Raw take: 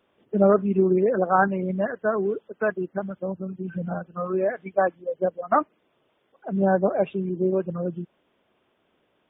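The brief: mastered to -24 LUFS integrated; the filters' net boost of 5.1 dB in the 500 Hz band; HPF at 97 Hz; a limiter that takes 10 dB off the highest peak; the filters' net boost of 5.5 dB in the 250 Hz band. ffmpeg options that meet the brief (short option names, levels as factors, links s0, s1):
-af "highpass=97,equalizer=f=250:t=o:g=8,equalizer=f=500:t=o:g=4,volume=0.944,alimiter=limit=0.211:level=0:latency=1"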